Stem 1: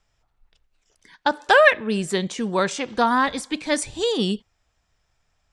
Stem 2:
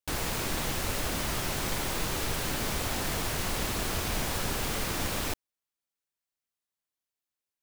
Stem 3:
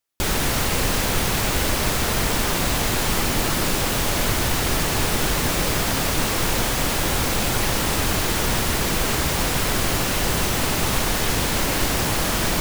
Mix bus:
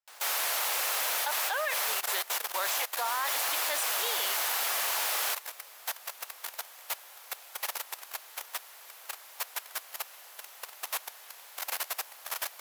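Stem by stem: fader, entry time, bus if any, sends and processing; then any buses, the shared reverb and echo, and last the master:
-4.5 dB, 0.00 s, no send, none
-1.0 dB, 0.00 s, muted 1.94–3.05 s, no send, none
-7.0 dB, 0.00 s, no send, peaking EQ 12 kHz +10.5 dB 0.25 oct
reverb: none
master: high-pass 650 Hz 24 dB/octave; level held to a coarse grid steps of 15 dB; upward expansion 1.5:1, over -41 dBFS

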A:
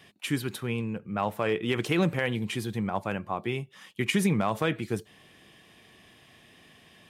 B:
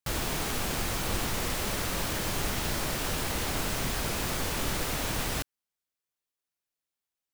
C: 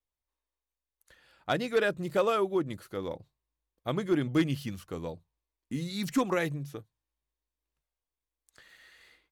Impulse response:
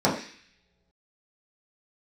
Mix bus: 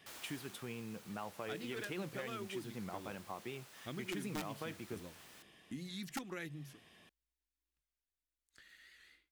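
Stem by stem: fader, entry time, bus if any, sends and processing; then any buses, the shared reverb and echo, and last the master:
-7.5 dB, 0.00 s, bus A, no send, none
-15.0 dB, 0.00 s, no bus, no send, high-pass 840 Hz 6 dB/octave; auto duck -10 dB, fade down 0.70 s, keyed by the first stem
-4.5 dB, 0.00 s, bus A, no send, high-order bell 700 Hz -8.5 dB; integer overflow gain 18.5 dB; endings held to a fixed fall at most 220 dB/s
bus A: 0.0 dB, peaking EQ 120 Hz -4.5 dB 1 oct; compression 2.5:1, threshold -44 dBFS, peak gain reduction 12.5 dB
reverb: none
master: warped record 78 rpm, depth 100 cents

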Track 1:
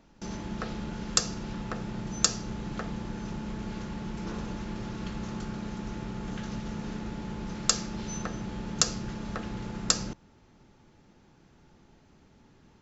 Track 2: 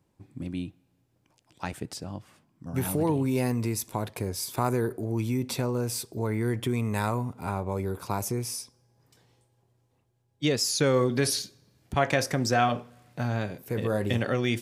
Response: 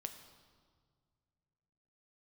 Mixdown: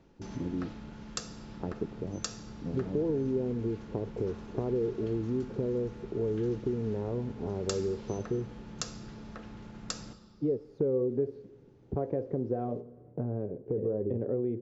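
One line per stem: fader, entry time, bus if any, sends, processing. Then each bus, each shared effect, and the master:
-7.0 dB, 0.00 s, send -3.5 dB, treble shelf 9 kHz -11.5 dB; auto duck -11 dB, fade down 0.85 s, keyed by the second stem
+1.0 dB, 0.00 s, send -13.5 dB, resonant low-pass 430 Hz, resonance Q 3.7; compression 2.5:1, threshold -36 dBFS, peak gain reduction 15 dB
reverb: on, RT60 1.8 s, pre-delay 7 ms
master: none

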